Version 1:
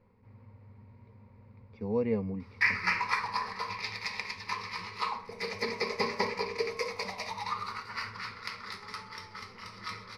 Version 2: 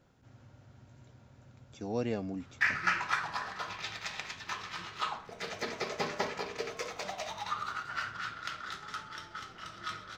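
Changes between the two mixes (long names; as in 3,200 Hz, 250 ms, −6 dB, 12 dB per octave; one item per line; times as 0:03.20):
speech: remove high-frequency loss of the air 420 metres
master: remove EQ curve with evenly spaced ripples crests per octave 0.89, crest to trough 15 dB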